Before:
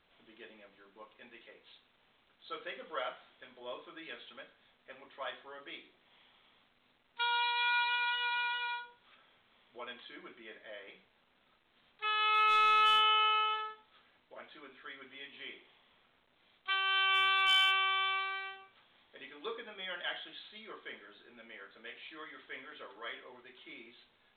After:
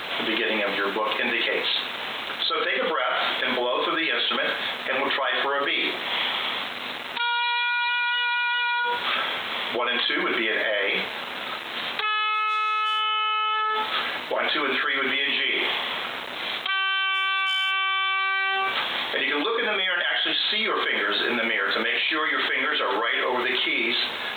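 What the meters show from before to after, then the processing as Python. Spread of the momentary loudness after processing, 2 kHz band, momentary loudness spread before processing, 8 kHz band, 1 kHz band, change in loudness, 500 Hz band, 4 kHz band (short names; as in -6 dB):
5 LU, +13.0 dB, 23 LU, n/a, +9.0 dB, +7.0 dB, +20.0 dB, +12.0 dB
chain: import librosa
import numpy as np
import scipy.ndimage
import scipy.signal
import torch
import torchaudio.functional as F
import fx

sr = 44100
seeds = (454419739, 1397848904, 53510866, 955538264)

y = fx.dynamic_eq(x, sr, hz=1800.0, q=1.3, threshold_db=-44.0, ratio=4.0, max_db=4)
y = fx.highpass(y, sr, hz=470.0, slope=6)
y = fx.env_flatten(y, sr, amount_pct=100)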